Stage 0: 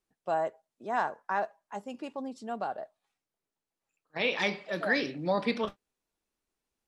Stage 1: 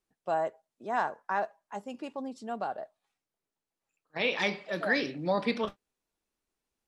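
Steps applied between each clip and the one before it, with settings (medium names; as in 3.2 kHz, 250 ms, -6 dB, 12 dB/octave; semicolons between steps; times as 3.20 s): no audible change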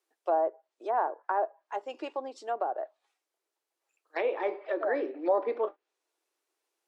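elliptic high-pass 330 Hz, stop band 50 dB; low-pass that closes with the level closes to 820 Hz, closed at -30.5 dBFS; trim +5 dB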